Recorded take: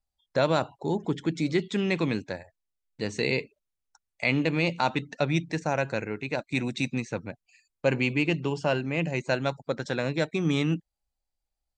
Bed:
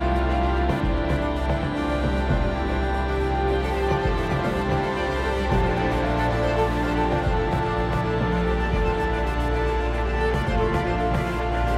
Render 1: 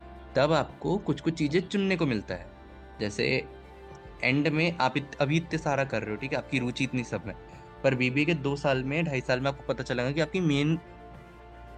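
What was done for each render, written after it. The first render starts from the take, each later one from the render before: add bed -24 dB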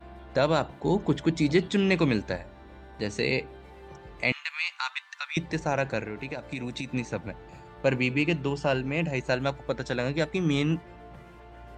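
0.83–2.41 s: gain +3 dB; 4.32–5.37 s: steep high-pass 1.1 kHz; 6.00–6.92 s: compression, threshold -29 dBFS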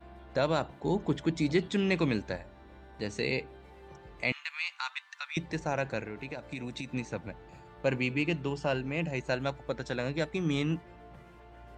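trim -4.5 dB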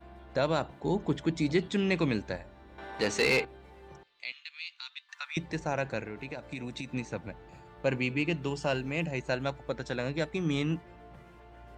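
2.78–3.45 s: overdrive pedal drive 21 dB, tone 4.3 kHz, clips at -15.5 dBFS; 4.03–5.09 s: band-pass filter 3.8 kHz, Q 2.3; 8.42–9.06 s: treble shelf 5.2 kHz +9.5 dB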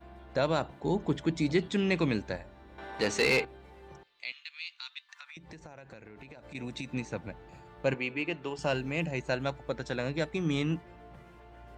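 5.03–6.55 s: compression 10:1, threshold -44 dBFS; 7.94–8.59 s: tone controls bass -13 dB, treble -9 dB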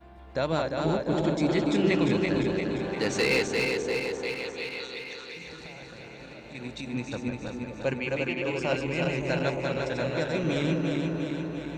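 backward echo that repeats 174 ms, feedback 78%, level -3 dB; repeats whose band climbs or falls 284 ms, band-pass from 260 Hz, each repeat 0.7 oct, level -2.5 dB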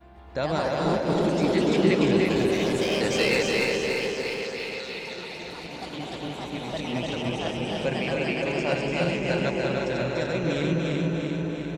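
ever faster or slower copies 134 ms, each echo +3 st, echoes 3, each echo -6 dB; feedback delay 293 ms, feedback 37%, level -4 dB

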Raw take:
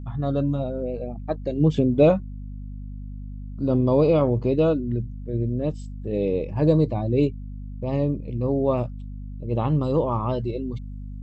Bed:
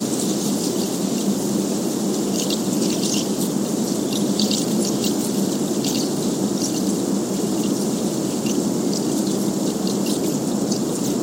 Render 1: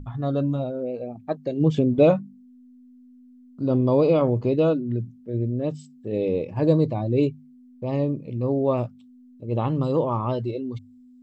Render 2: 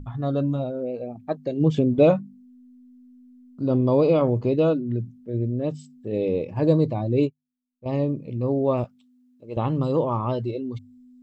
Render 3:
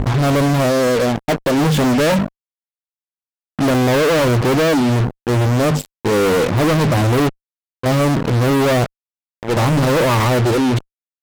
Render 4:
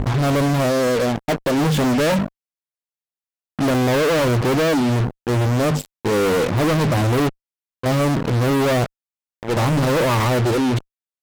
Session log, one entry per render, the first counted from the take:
hum notches 50/100/150/200 Hz
7.23–7.86 s: upward expansion 2.5:1, over -43 dBFS; 8.84–9.57 s: high-pass 640 Hz 6 dB/octave
fuzz box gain 45 dB, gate -40 dBFS
trim -3 dB

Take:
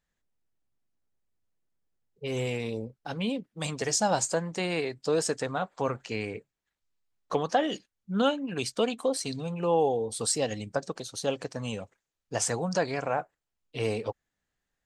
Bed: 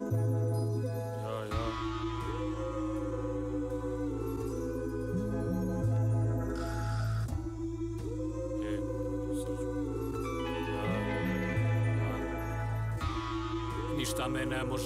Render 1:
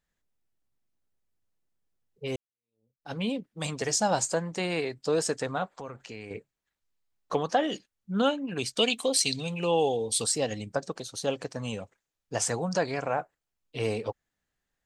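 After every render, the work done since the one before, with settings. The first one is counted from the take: 2.36–3.12 s: fade in exponential; 5.79–6.31 s: compression 2.5:1, threshold -41 dBFS; 8.77–10.24 s: resonant high shelf 1.9 kHz +9 dB, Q 1.5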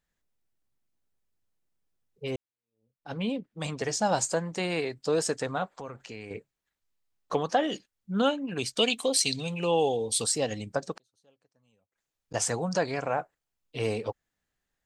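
2.29–4.05 s: treble shelf 4.2 kHz -> 6.2 kHz -9.5 dB; 10.96–12.34 s: inverted gate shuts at -34 dBFS, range -35 dB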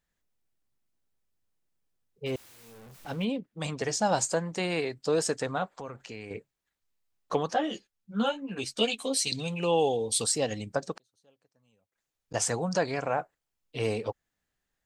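2.26–3.25 s: jump at every zero crossing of -43.5 dBFS; 7.54–9.32 s: three-phase chorus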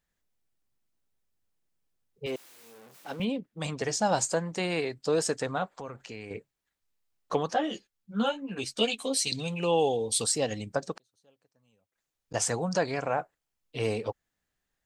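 2.26–3.20 s: high-pass 260 Hz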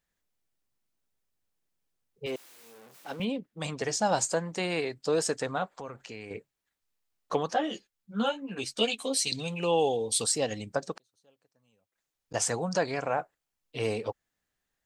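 bass shelf 190 Hz -3.5 dB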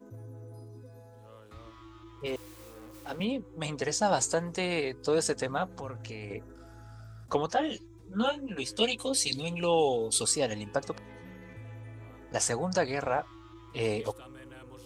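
add bed -15.5 dB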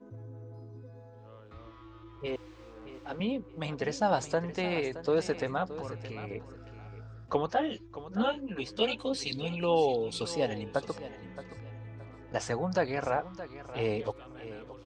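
distance through air 170 m; feedback delay 621 ms, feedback 25%, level -14 dB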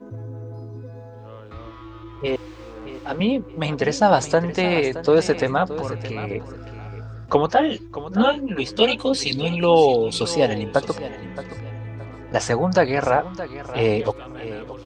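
trim +11.5 dB

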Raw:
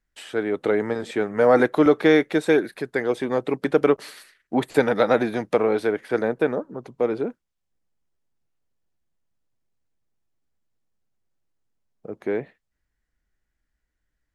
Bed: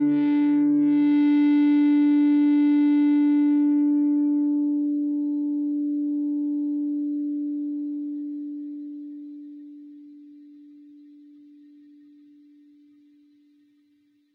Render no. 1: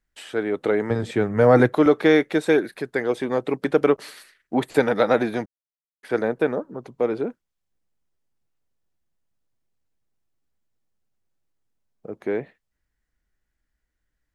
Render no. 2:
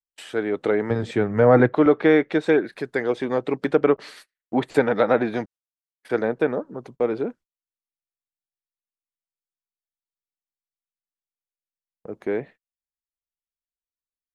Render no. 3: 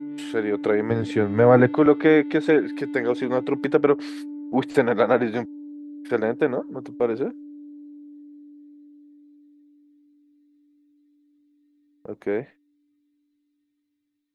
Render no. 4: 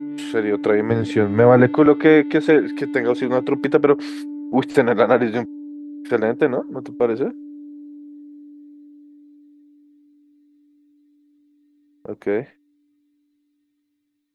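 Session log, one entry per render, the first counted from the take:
0.90–1.75 s: peaking EQ 110 Hz +14.5 dB 1.4 oct; 5.46–6.03 s: mute
gate -44 dBFS, range -31 dB; low-pass that closes with the level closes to 2.6 kHz, closed at -14.5 dBFS
add bed -13 dB
trim +4 dB; peak limiter -2 dBFS, peak gain reduction 2.5 dB

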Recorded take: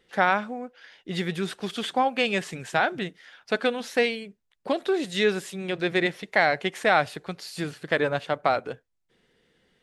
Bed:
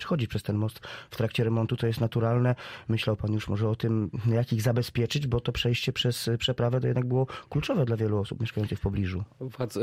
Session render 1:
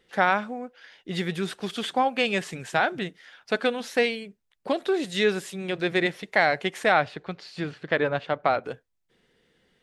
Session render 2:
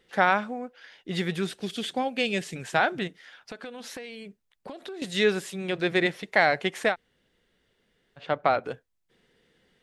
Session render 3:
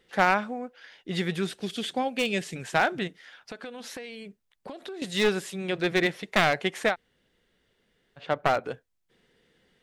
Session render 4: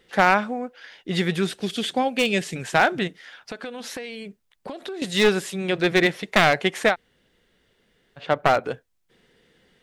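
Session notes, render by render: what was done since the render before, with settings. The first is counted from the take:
6.92–8.64 s: low-pass 3.9 kHz
1.47–2.56 s: peaking EQ 1.1 kHz -11 dB 1.3 oct; 3.07–5.02 s: compression 8:1, threshold -36 dBFS; 6.91–8.21 s: room tone, crossfade 0.10 s
one-sided wavefolder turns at -19 dBFS
trim +5.5 dB; peak limiter -3 dBFS, peak gain reduction 2 dB

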